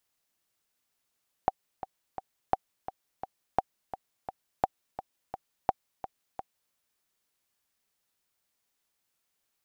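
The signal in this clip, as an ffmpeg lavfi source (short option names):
-f lavfi -i "aevalsrc='pow(10,(-9.5-13*gte(mod(t,3*60/171),60/171))/20)*sin(2*PI*768*mod(t,60/171))*exp(-6.91*mod(t,60/171)/0.03)':d=5.26:s=44100"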